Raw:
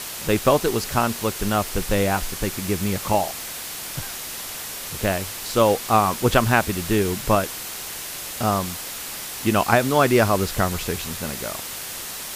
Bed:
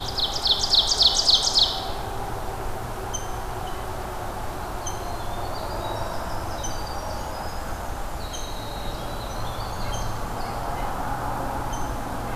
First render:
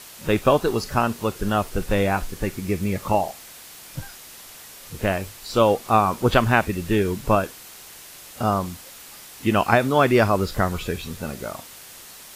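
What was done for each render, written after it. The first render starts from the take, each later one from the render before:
noise reduction from a noise print 10 dB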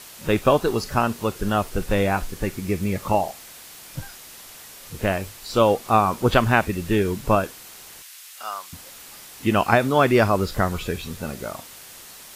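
0:08.02–0:08.73: high-pass filter 1,500 Hz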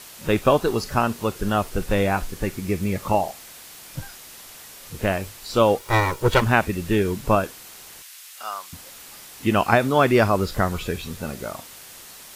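0:05.79–0:06.42: lower of the sound and its delayed copy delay 2.1 ms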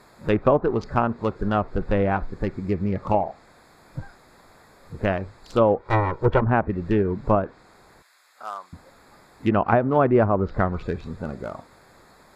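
adaptive Wiener filter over 15 samples
treble cut that deepens with the level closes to 1,100 Hz, closed at −14.5 dBFS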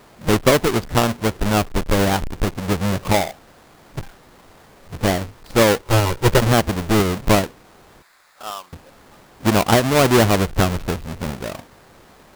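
each half-wave held at its own peak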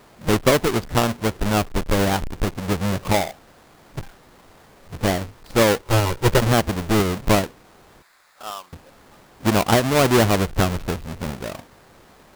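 level −2 dB

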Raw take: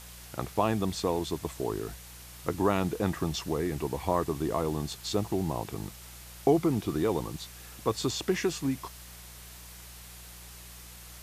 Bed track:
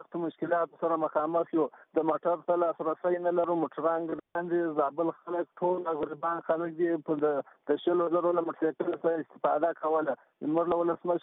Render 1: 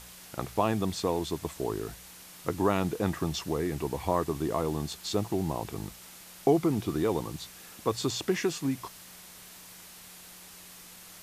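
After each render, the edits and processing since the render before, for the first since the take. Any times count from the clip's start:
hum removal 60 Hz, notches 2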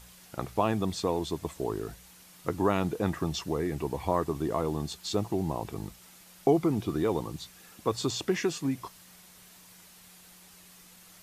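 broadband denoise 6 dB, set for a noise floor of −49 dBFS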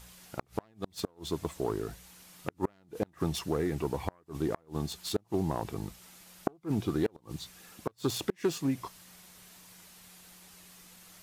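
phase distortion by the signal itself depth 0.24 ms
gate with flip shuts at −16 dBFS, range −34 dB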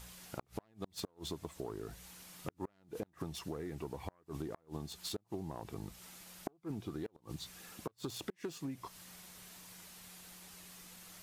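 downward compressor 6 to 1, threshold −39 dBFS, peak gain reduction 15 dB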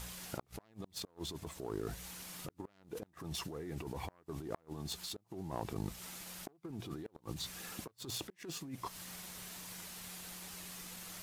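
leveller curve on the samples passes 1
compressor whose output falls as the input rises −42 dBFS, ratio −1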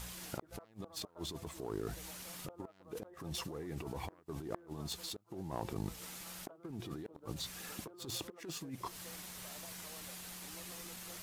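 mix in bed track −30.5 dB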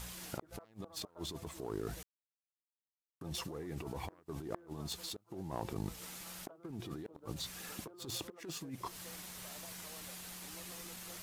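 0:02.03–0:03.21: silence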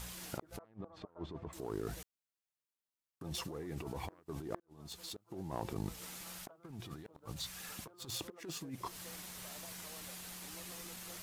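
0:00.59–0:01.53: low-pass filter 1,700 Hz
0:04.60–0:05.27: fade in
0:06.38–0:08.21: parametric band 340 Hz −7.5 dB 1.4 octaves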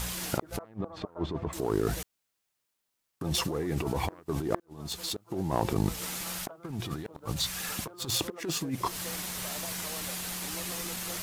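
level +12 dB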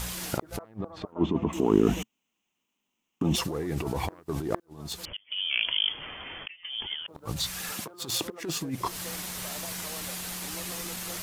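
0:01.12–0:03.36: drawn EQ curve 130 Hz 0 dB, 220 Hz +15 dB, 560 Hz 0 dB, 1,000 Hz +6 dB, 1,600 Hz −4 dB, 2,900 Hz +11 dB, 4,500 Hz −11 dB, 6,400 Hz +3 dB, 10,000 Hz −11 dB, 16,000 Hz −4 dB
0:05.05–0:07.08: voice inversion scrambler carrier 3,300 Hz
0:07.72–0:08.26: high-pass filter 160 Hz

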